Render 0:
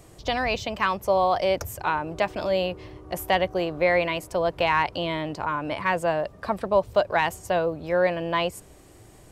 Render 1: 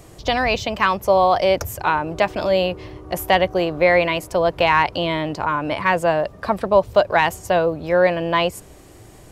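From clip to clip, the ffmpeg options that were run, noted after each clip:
ffmpeg -i in.wav -af "equalizer=frequency=8400:width=6.1:gain=-3,volume=6dB" out.wav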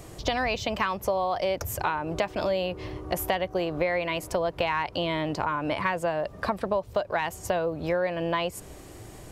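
ffmpeg -i in.wav -af "acompressor=threshold=-24dB:ratio=6" out.wav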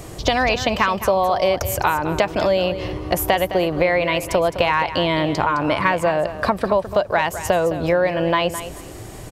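ffmpeg -i in.wav -af "aecho=1:1:212|424:0.251|0.0452,volume=8.5dB" out.wav

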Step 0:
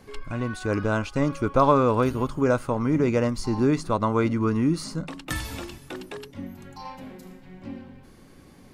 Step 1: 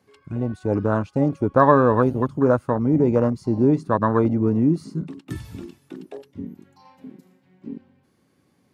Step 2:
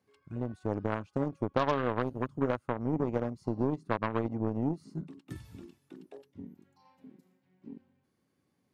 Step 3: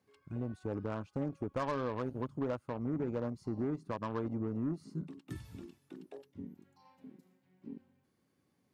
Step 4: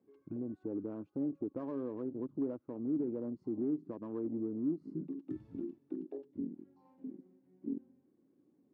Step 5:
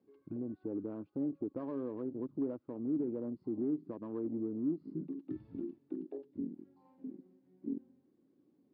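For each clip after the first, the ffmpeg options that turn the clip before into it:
ffmpeg -i in.wav -af "highpass=frequency=86:width=0.5412,highpass=frequency=86:width=1.3066,afwtdn=0.0501,volume=4dB" out.wav
ffmpeg -i in.wav -af "aeval=exprs='0.891*(cos(1*acos(clip(val(0)/0.891,-1,1)))-cos(1*PI/2))+0.0178*(cos(3*acos(clip(val(0)/0.891,-1,1)))-cos(3*PI/2))+0.0891*(cos(7*acos(clip(val(0)/0.891,-1,1)))-cos(7*PI/2))':channel_layout=same,acompressor=threshold=-28dB:ratio=3" out.wav
ffmpeg -i in.wav -af "asoftclip=type=tanh:threshold=-28dB" out.wav
ffmpeg -i in.wav -af "alimiter=level_in=11.5dB:limit=-24dB:level=0:latency=1:release=200,volume=-11.5dB,bandpass=frequency=310:width_type=q:width=2.9:csg=0,volume=11.5dB" out.wav
ffmpeg -i in.wav -af "aresample=11025,aresample=44100" out.wav

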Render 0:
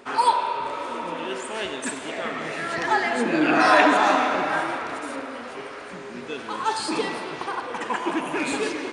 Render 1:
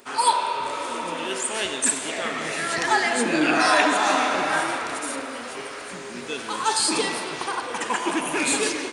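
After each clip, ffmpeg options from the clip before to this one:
ffmpeg -i in.wav -af "dynaudnorm=framelen=150:gausssize=3:maxgain=5dB,aemphasis=mode=production:type=75fm,volume=-4dB" out.wav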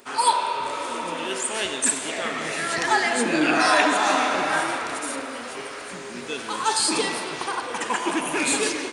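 ffmpeg -i in.wav -af anull out.wav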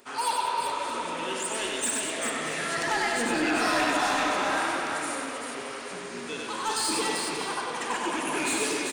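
ffmpeg -i in.wav -filter_complex "[0:a]asoftclip=type=tanh:threshold=-17.5dB,asplit=2[link_01][link_02];[link_02]aecho=0:1:95|196|391|629:0.668|0.316|0.562|0.15[link_03];[link_01][link_03]amix=inputs=2:normalize=0,volume=-5dB" out.wav

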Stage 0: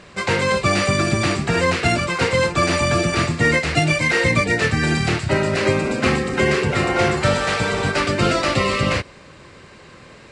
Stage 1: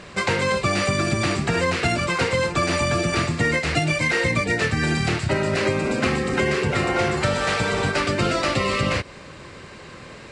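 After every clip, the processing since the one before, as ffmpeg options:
ffmpeg -i in.wav -af "acompressor=threshold=-23dB:ratio=3,volume=3dB" out.wav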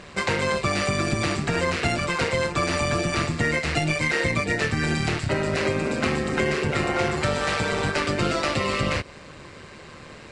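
ffmpeg -i in.wav -af "tremolo=f=150:d=0.519" out.wav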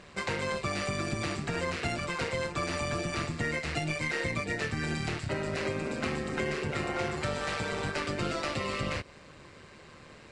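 ffmpeg -i in.wav -af "aeval=exprs='0.355*(cos(1*acos(clip(val(0)/0.355,-1,1)))-cos(1*PI/2))+0.00316*(cos(8*acos(clip(val(0)/0.355,-1,1)))-cos(8*PI/2))':channel_layout=same,volume=-8.5dB" out.wav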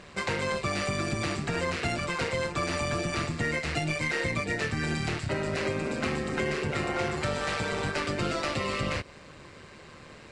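ffmpeg -i in.wav -af "asoftclip=type=tanh:threshold=-18.5dB,volume=3dB" out.wav

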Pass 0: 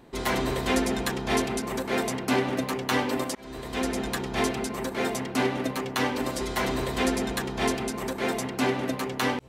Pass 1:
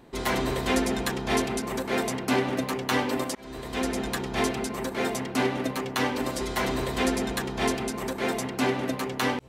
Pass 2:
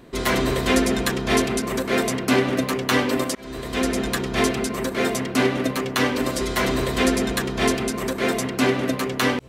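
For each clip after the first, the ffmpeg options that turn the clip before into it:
ffmpeg -i in.wav -af anull out.wav
ffmpeg -i in.wav -af "equalizer=frequency=840:width=7.5:gain=-12.5,volume=6dB" out.wav

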